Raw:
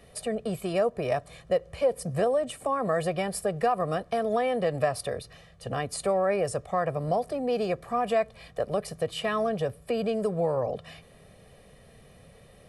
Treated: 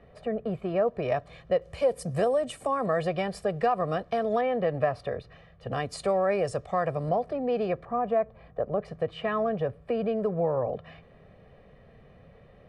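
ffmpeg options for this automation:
-af "asetnsamples=n=441:p=0,asendcmd='0.88 lowpass f 3500;1.62 lowpass f 9000;2.86 lowpass f 4600;4.41 lowpass f 2400;5.72 lowpass f 6100;7.09 lowpass f 2600;7.85 lowpass f 1200;8.81 lowpass f 2100',lowpass=1800"

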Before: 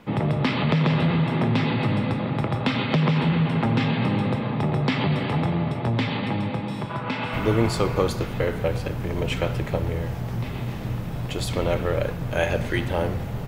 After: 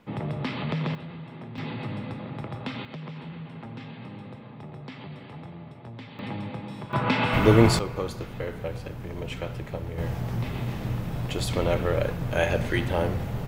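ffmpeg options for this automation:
-af "asetnsamples=n=441:p=0,asendcmd='0.95 volume volume -18.5dB;1.58 volume volume -10.5dB;2.85 volume volume -18dB;6.19 volume volume -8dB;6.93 volume volume 4dB;7.79 volume volume -8.5dB;9.98 volume volume -1dB',volume=0.398"

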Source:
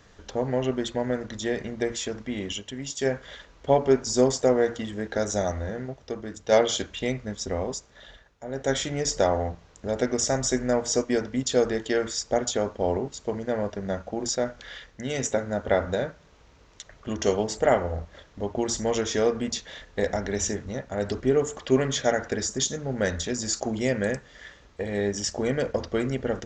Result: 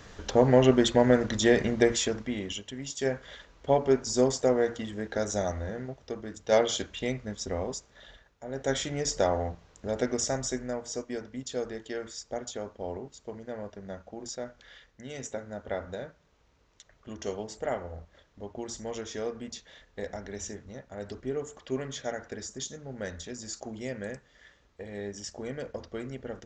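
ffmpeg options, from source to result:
-af "volume=2,afade=t=out:st=1.71:d=0.72:silence=0.334965,afade=t=out:st=10.11:d=0.67:silence=0.421697"

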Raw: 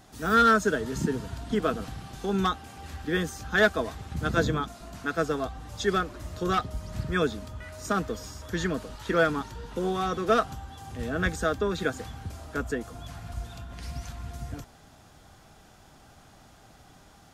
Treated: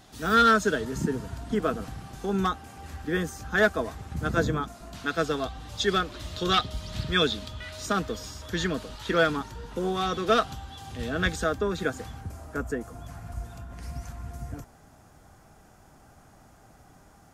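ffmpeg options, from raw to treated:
-af "asetnsamples=n=441:p=0,asendcmd='0.85 equalizer g -4;4.93 equalizer g 7.5;6.12 equalizer g 14;7.85 equalizer g 6;9.37 equalizer g -0.5;9.97 equalizer g 7;11.44 equalizer g -2;12.21 equalizer g -10',equalizer=f=3600:t=o:w=1.1:g=4.5"

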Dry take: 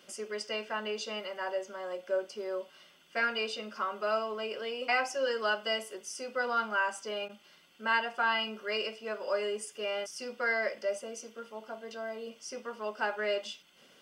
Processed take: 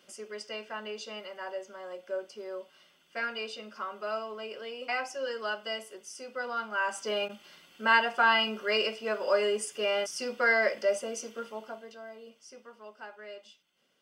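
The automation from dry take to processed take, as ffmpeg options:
-af "volume=1.88,afade=t=in:st=6.71:d=0.4:silence=0.354813,afade=t=out:st=11.42:d=0.51:silence=0.266073,afade=t=out:st=11.93:d=1.17:silence=0.421697"

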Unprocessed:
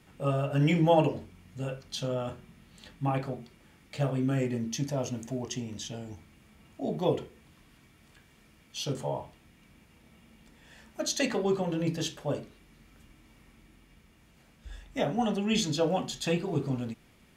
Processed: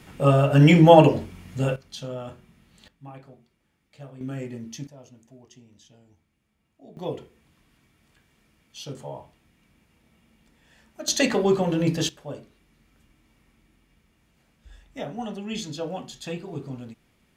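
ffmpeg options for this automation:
-af "asetnsamples=n=441:p=0,asendcmd='1.76 volume volume -2dB;2.88 volume volume -13.5dB;4.21 volume volume -4.5dB;4.87 volume volume -16dB;6.97 volume volume -4dB;11.08 volume volume 7dB;12.09 volume volume -4.5dB',volume=3.35"

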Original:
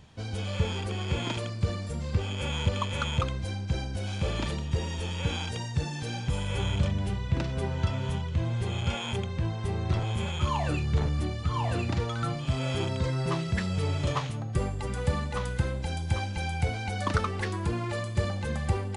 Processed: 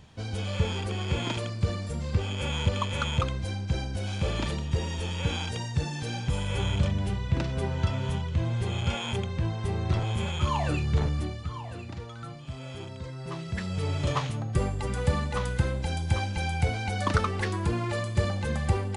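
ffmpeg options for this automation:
-af "volume=4.47,afade=t=out:st=11.04:d=0.59:silence=0.281838,afade=t=in:st=13.19:d=1.07:silence=0.251189"

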